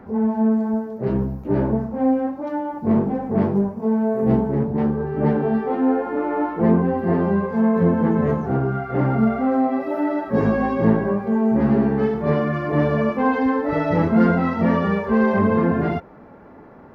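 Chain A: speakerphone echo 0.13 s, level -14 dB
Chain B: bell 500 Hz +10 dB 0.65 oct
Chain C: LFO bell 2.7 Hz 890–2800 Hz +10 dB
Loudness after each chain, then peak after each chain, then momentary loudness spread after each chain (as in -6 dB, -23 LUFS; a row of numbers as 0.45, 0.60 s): -20.5, -17.0, -19.5 LUFS; -4.0, -1.5, -2.5 dBFS; 5, 6, 5 LU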